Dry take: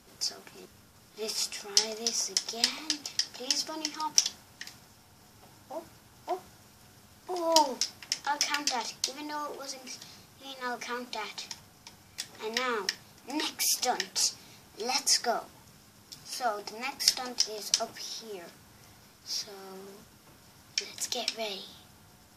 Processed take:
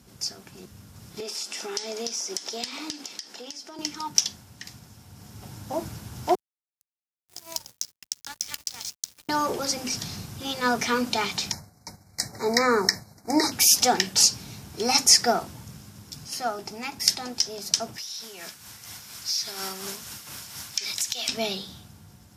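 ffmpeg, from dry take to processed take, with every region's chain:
ffmpeg -i in.wav -filter_complex "[0:a]asettb=1/sr,asplit=3[link_01][link_02][link_03];[link_01]atrim=end=1.204[link_04];[link_02]atrim=start=1.2:end=3.79,asetpts=PTS-STARTPTS,afade=type=in:duration=0.004:curve=qsin,afade=type=out:start_time=2.586:duration=0.004:curve=qsin,highpass=frequency=270:width=0.5412,highpass=frequency=270:width=1.3066,highshelf=frequency=12000:gain=-11,acompressor=threshold=-41dB:ratio=5:attack=3.2:release=140:knee=1:detection=peak[link_05];[link_03]atrim=start=3.786[link_06];[link_04][link_05]acrossfade=duration=0.004:curve1=hsin:curve2=qsin[link_07];[link_07][link_06]acrossfade=duration=0.004:curve1=qsin:curve2=hsin,asettb=1/sr,asplit=3[link_08][link_09][link_10];[link_08]atrim=end=6.354[link_11];[link_09]atrim=start=6.35:end=9.29,asetpts=PTS-STARTPTS,afade=type=in:duration=0.004:curve=qsin,afade=type=out:start_time=2.936:duration=0.004:curve=qsin,aderivative,acompressor=threshold=-37dB:ratio=8:attack=3.2:release=140:knee=1:detection=peak,aeval=exprs='sgn(val(0))*max(abs(val(0))-0.00473,0)':channel_layout=same[link_12];[link_10]atrim=start=9.286[link_13];[link_11][link_12]acrossfade=duration=0.004:curve1=hsin:curve2=qsin[link_14];[link_14][link_13]acrossfade=duration=0.004:curve1=qsin:curve2=hsin,asettb=1/sr,asplit=3[link_15][link_16][link_17];[link_15]atrim=end=11.524[link_18];[link_16]atrim=start=11.52:end=13.52,asetpts=PTS-STARTPTS,afade=type=in:duration=0.004:curve=qsin,afade=type=out:start_time=1.996:duration=0.004:curve=qsin,agate=range=-33dB:threshold=-48dB:ratio=3:release=100:detection=peak,asuperstop=centerf=3000:order=20:qfactor=1.9,equalizer=frequency=660:width_type=o:width=0.73:gain=7[link_19];[link_17]atrim=start=13.516[link_20];[link_18][link_19]acrossfade=duration=0.004:curve1=hsin:curve2=qsin[link_21];[link_21][link_20]acrossfade=duration=0.004:curve1=qsin:curve2=hsin,asettb=1/sr,asplit=3[link_22][link_23][link_24];[link_22]atrim=end=17.984[link_25];[link_23]atrim=start=17.98:end=21.29,asetpts=PTS-STARTPTS,afade=type=in:duration=0.004:curve=qsin,afade=type=out:start_time=3.306:duration=0.004:curve=qsin,tiltshelf=frequency=690:gain=-10,tremolo=f=4.2:d=0.54,acompressor=threshold=-35dB:ratio=10:attack=3.2:release=140:knee=1:detection=peak[link_26];[link_24]atrim=start=21.286[link_27];[link_25][link_26]acrossfade=duration=0.004:curve1=hsin:curve2=qsin[link_28];[link_28][link_27]acrossfade=duration=0.004:curve1=qsin:curve2=hsin,highpass=63,bass=frequency=250:gain=12,treble=frequency=4000:gain=3,dynaudnorm=framelen=110:gausssize=21:maxgain=11.5dB,volume=-1dB" out.wav

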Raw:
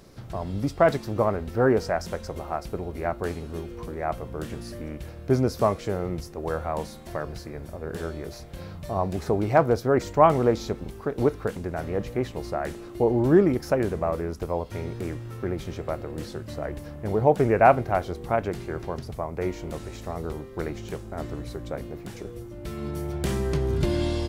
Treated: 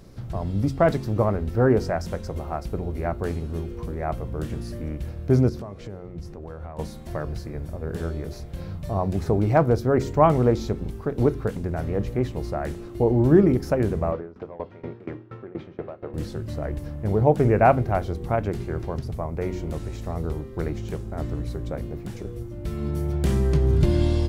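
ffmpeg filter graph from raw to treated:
ffmpeg -i in.wav -filter_complex "[0:a]asettb=1/sr,asplit=3[link_01][link_02][link_03];[link_01]atrim=end=5.494[link_04];[link_02]atrim=start=5.49:end=6.79,asetpts=PTS-STARTPTS,afade=type=in:duration=0.004:curve=qsin,afade=type=out:start_time=1.296:duration=0.004:curve=qsin,highshelf=frequency=6800:gain=-11,acompressor=threshold=-37dB:ratio=4:attack=3.2:release=140:knee=1:detection=peak[link_05];[link_03]atrim=start=6.786[link_06];[link_04][link_05]acrossfade=duration=0.004:curve1=hsin:curve2=qsin[link_07];[link_07][link_06]acrossfade=duration=0.004:curve1=qsin:curve2=hsin,asettb=1/sr,asplit=3[link_08][link_09][link_10];[link_08]atrim=end=14.124[link_11];[link_09]atrim=start=14.12:end=16.14,asetpts=PTS-STARTPTS,afade=type=in:duration=0.004:curve=qsin,afade=type=out:start_time=2.016:duration=0.004:curve=qsin,asplit=2[link_12][link_13];[link_13]highpass=frequency=720:poles=1,volume=15dB,asoftclip=type=tanh:threshold=-14dB[link_14];[link_12][link_14]amix=inputs=2:normalize=0,lowpass=frequency=1300:poles=1,volume=-6dB,highpass=120,lowpass=3400,aeval=exprs='val(0)*pow(10,-21*if(lt(mod(4.2*n/s,1),2*abs(4.2)/1000),1-mod(4.2*n/s,1)/(2*abs(4.2)/1000),(mod(4.2*n/s,1)-2*abs(4.2)/1000)/(1-2*abs(4.2)/1000))/20)':channel_layout=same[link_15];[link_10]atrim=start=16.136[link_16];[link_11][link_15]acrossfade=duration=0.004:curve1=hsin:curve2=qsin[link_17];[link_17][link_16]acrossfade=duration=0.004:curve1=qsin:curve2=hsin,lowshelf=frequency=270:gain=10.5,bandreject=frequency=45.29:width_type=h:width=4,bandreject=frequency=90.58:width_type=h:width=4,bandreject=frequency=135.87:width_type=h:width=4,bandreject=frequency=181.16:width_type=h:width=4,bandreject=frequency=226.45:width_type=h:width=4,bandreject=frequency=271.74:width_type=h:width=4,bandreject=frequency=317.03:width_type=h:width=4,bandreject=frequency=362.32:width_type=h:width=4,bandreject=frequency=407.61:width_type=h:width=4,volume=-2dB" out.wav

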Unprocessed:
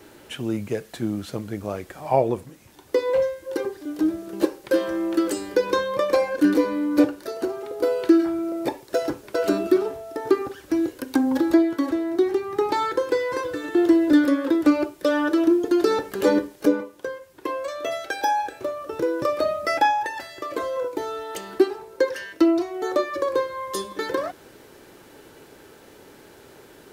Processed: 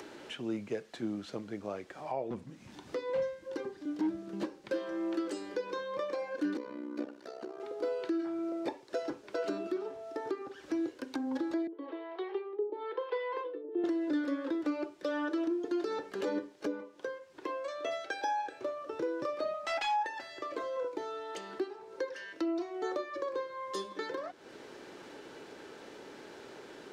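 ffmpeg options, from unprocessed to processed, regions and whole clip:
ffmpeg -i in.wav -filter_complex "[0:a]asettb=1/sr,asplit=3[link_01][link_02][link_03];[link_01]atrim=end=2.304[link_04];[link_02]atrim=start=2.3:end=4.73,asetpts=PTS-STARTPTS,afade=type=in:duration=0.004:curve=qsin,afade=type=out:start_time=2.426:duration=0.004:curve=qsin,lowshelf=frequency=290:width_type=q:width=1.5:gain=7.5,volume=16dB,asoftclip=hard,volume=-16dB[link_05];[link_03]atrim=start=4.726[link_06];[link_04][link_05]acrossfade=duration=0.004:curve1=hsin:curve2=qsin[link_07];[link_07][link_06]acrossfade=duration=0.004:curve1=qsin:curve2=hsin,asettb=1/sr,asplit=3[link_08][link_09][link_10];[link_08]atrim=end=6.574[link_11];[link_09]atrim=start=6.57:end=7.6,asetpts=PTS-STARTPTS,afade=type=in:duration=0.004:curve=qsin,afade=type=out:start_time=1.026:duration=0.004:curve=qsin,tremolo=f=64:d=0.889,acompressor=threshold=-37dB:ratio=1.5:attack=3.2:release=140:knee=1:detection=peak[link_12];[link_10]atrim=start=7.596[link_13];[link_11][link_12]acrossfade=duration=0.004:curve1=hsin:curve2=qsin[link_14];[link_14][link_13]acrossfade=duration=0.004:curve1=qsin:curve2=hsin,asettb=1/sr,asplit=3[link_15][link_16][link_17];[link_15]atrim=end=11.674[link_18];[link_16]atrim=start=11.67:end=13.84,asetpts=PTS-STARTPTS,afade=type=in:duration=0.004:curve=qsin,afade=type=out:start_time=2.166:duration=0.004:curve=qsin,highpass=frequency=360:width=0.5412,highpass=frequency=360:width=1.3066,equalizer=frequency=440:width_type=q:width=4:gain=9,equalizer=frequency=1000:width_type=q:width=4:gain=6,equalizer=frequency=1500:width_type=q:width=4:gain=-4,equalizer=frequency=3100:width_type=q:width=4:gain=6,lowpass=frequency=3500:width=0.5412,lowpass=frequency=3500:width=1.3066,acrossover=split=490[link_19][link_20];[link_19]aeval=exprs='val(0)*(1-1/2+1/2*cos(2*PI*1*n/s))':channel_layout=same[link_21];[link_20]aeval=exprs='val(0)*(1-1/2-1/2*cos(2*PI*1*n/s))':channel_layout=same[link_22];[link_21][link_22]amix=inputs=2:normalize=0[link_23];[link_17]atrim=start=13.836[link_24];[link_18][link_23]acrossfade=duration=0.004:curve1=hsin:curve2=qsin[link_25];[link_25][link_24]acrossfade=duration=0.004:curve1=qsin:curve2=hsin,asettb=1/sr,asplit=3[link_26][link_27][link_28];[link_26]atrim=end=19.544[link_29];[link_27]atrim=start=19.54:end=20.05,asetpts=PTS-STARTPTS,afade=type=in:duration=0.004:curve=qsin,afade=type=out:start_time=0.506:duration=0.004:curve=qsin,aeval=exprs='0.106*(abs(mod(val(0)/0.106+3,4)-2)-1)':channel_layout=same,lowshelf=frequency=590:width_type=q:width=3:gain=-6[link_30];[link_28]atrim=start=20.046[link_31];[link_29][link_30]acrossfade=duration=0.004:curve1=hsin:curve2=qsin[link_32];[link_32][link_31]acrossfade=duration=0.004:curve1=qsin:curve2=hsin,acrossover=split=170 7200:gain=0.224 1 0.0794[link_33][link_34][link_35];[link_33][link_34][link_35]amix=inputs=3:normalize=0,alimiter=limit=-16.5dB:level=0:latency=1:release=342,acompressor=mode=upward:threshold=-32dB:ratio=2.5,volume=-8dB" out.wav

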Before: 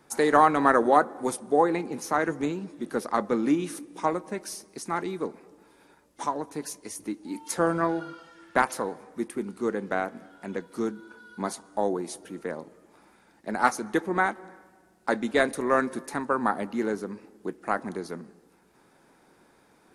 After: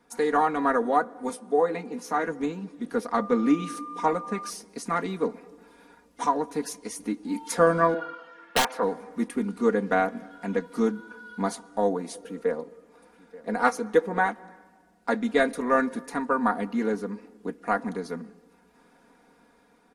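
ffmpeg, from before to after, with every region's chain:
ffmpeg -i in.wav -filter_complex "[0:a]asettb=1/sr,asplit=3[link_01][link_02][link_03];[link_01]atrim=end=1.294[link_04];[link_02]atrim=start=1.29:end=2.26,asetpts=PTS-STARTPTS,afade=type=in:duration=0.004:curve=qsin,afade=type=out:start_time=0.966:duration=0.004:curve=qsin,highpass=110,asplit=2[link_05][link_06];[link_06]adelay=16,volume=-9dB[link_07];[link_05][link_07]amix=inputs=2:normalize=0,atrim=end_sample=42777[link_08];[link_03]atrim=start=2.256[link_09];[link_04][link_08]acrossfade=duration=0.004:curve1=hsin:curve2=qsin[link_10];[link_10][link_09]acrossfade=duration=0.004:curve1=qsin:curve2=hsin,asettb=1/sr,asplit=3[link_11][link_12][link_13];[link_11]atrim=end=3.164[link_14];[link_12]atrim=start=3.16:end=4.5,asetpts=PTS-STARTPTS,afade=type=in:duration=0.004:curve=qsin,afade=type=out:start_time=1.336:duration=0.004:curve=qsin,lowpass=11000,aeval=exprs='val(0)+0.00891*sin(2*PI*1200*n/s)':channel_layout=same[link_15];[link_13]atrim=start=4.496[link_16];[link_14][link_15]acrossfade=duration=0.004:curve1=hsin:curve2=qsin[link_17];[link_17][link_16]acrossfade=duration=0.004:curve1=qsin:curve2=hsin,asettb=1/sr,asplit=3[link_18][link_19][link_20];[link_18]atrim=end=7.944[link_21];[link_19]atrim=start=7.94:end=8.83,asetpts=PTS-STARTPTS,afade=type=in:duration=0.004:curve=qsin,afade=type=out:start_time=0.886:duration=0.004:curve=qsin,bass=frequency=250:gain=-14,treble=frequency=4000:gain=-15,aeval=exprs='(mod(6.31*val(0)+1,2)-1)/6.31':channel_layout=same[link_22];[link_20]atrim=start=8.826[link_23];[link_21][link_22]acrossfade=duration=0.004:curve1=hsin:curve2=qsin[link_24];[link_24][link_23]acrossfade=duration=0.004:curve1=qsin:curve2=hsin,asettb=1/sr,asplit=3[link_25][link_26][link_27];[link_25]atrim=end=12.144[link_28];[link_26]atrim=start=12.14:end=14.29,asetpts=PTS-STARTPTS,afade=type=in:duration=0.004:curve=qsin,afade=type=out:start_time=2.146:duration=0.004:curve=qsin,equalizer=frequency=480:width=5.8:gain=9,aecho=1:1:882:0.119,atrim=end_sample=94815[link_29];[link_27]atrim=start=14.286[link_30];[link_28][link_29]acrossfade=duration=0.004:curve1=hsin:curve2=qsin[link_31];[link_31][link_30]acrossfade=duration=0.004:curve1=qsin:curve2=hsin,highshelf=frequency=5900:gain=-6,aecho=1:1:4.2:0.79,dynaudnorm=framelen=990:gausssize=5:maxgain=11.5dB,volume=-5.5dB" out.wav

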